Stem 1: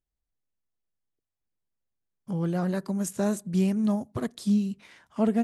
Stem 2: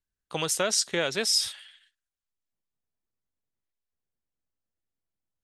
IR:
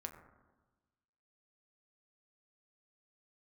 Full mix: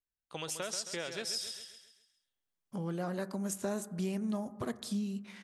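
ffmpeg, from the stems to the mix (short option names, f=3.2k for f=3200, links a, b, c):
-filter_complex "[0:a]lowshelf=f=190:g=-11,adelay=450,volume=-3dB,asplit=2[a][b];[b]volume=-5dB[c];[1:a]volume=-10dB,asplit=2[d][e];[e]volume=-9dB[f];[2:a]atrim=start_sample=2205[g];[c][g]afir=irnorm=-1:irlink=0[h];[f]aecho=0:1:134|268|402|536|670|804:1|0.43|0.185|0.0795|0.0342|0.0147[i];[a][d][h][i]amix=inputs=4:normalize=0,acompressor=threshold=-35dB:ratio=2"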